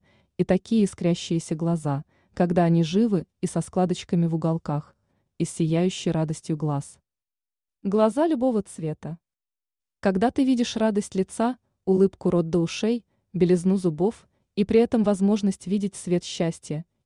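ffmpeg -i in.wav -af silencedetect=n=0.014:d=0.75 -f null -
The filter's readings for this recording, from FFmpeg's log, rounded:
silence_start: 6.91
silence_end: 7.85 | silence_duration: 0.94
silence_start: 9.15
silence_end: 10.03 | silence_duration: 0.89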